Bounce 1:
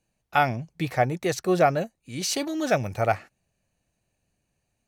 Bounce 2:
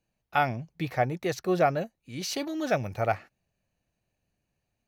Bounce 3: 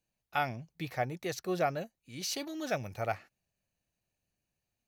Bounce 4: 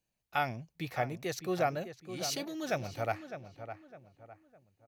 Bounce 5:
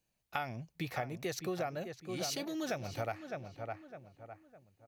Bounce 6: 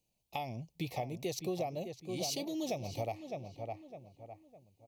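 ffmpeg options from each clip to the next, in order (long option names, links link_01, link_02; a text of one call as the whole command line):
ffmpeg -i in.wav -af "equalizer=frequency=8400:width=1.6:gain=-9,volume=-3.5dB" out.wav
ffmpeg -i in.wav -af "highshelf=frequency=3000:gain=7.5,volume=-7.5dB" out.wav
ffmpeg -i in.wav -filter_complex "[0:a]asplit=2[link_01][link_02];[link_02]adelay=607,lowpass=frequency=2200:poles=1,volume=-10dB,asplit=2[link_03][link_04];[link_04]adelay=607,lowpass=frequency=2200:poles=1,volume=0.36,asplit=2[link_05][link_06];[link_06]adelay=607,lowpass=frequency=2200:poles=1,volume=0.36,asplit=2[link_07][link_08];[link_08]adelay=607,lowpass=frequency=2200:poles=1,volume=0.36[link_09];[link_01][link_03][link_05][link_07][link_09]amix=inputs=5:normalize=0" out.wav
ffmpeg -i in.wav -af "acompressor=threshold=-36dB:ratio=6,volume=2.5dB" out.wav
ffmpeg -i in.wav -af "asuperstop=centerf=1500:order=4:qfactor=1,volume=1dB" out.wav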